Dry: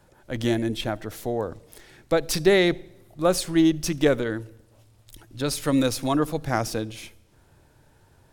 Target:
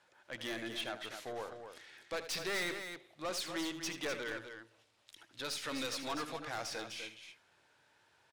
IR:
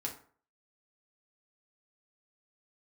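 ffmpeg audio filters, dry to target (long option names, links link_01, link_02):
-filter_complex "[0:a]lowpass=2600,aderivative,aeval=exprs='(tanh(158*val(0)+0.25)-tanh(0.25))/158':channel_layout=same,asplit=2[link_01][link_02];[link_02]aecho=0:1:78.72|250.7:0.251|0.398[link_03];[link_01][link_03]amix=inputs=2:normalize=0,volume=10dB"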